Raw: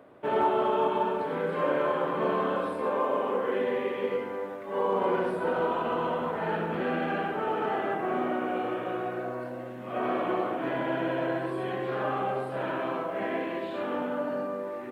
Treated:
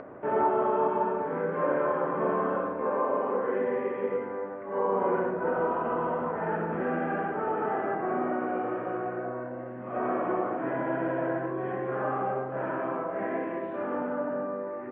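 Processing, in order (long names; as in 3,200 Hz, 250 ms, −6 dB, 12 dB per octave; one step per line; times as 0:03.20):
low-pass filter 1,900 Hz 24 dB per octave
upward compression, threshold −35 dBFS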